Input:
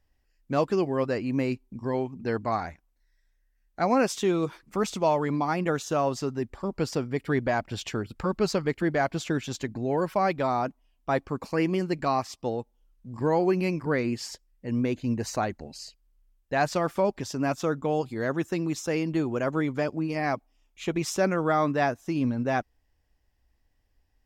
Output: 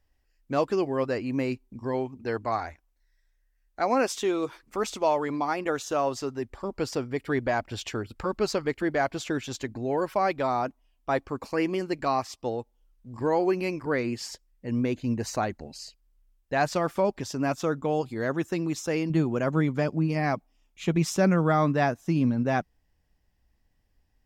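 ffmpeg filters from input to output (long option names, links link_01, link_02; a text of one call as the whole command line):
ffmpeg -i in.wav -af "asetnsamples=nb_out_samples=441:pad=0,asendcmd='2.15 equalizer g -14.5;6.52 equalizer g -8;14.21 equalizer g -0.5;19.1 equalizer g 9',equalizer=frequency=170:width_type=o:width=0.62:gain=-6.5" out.wav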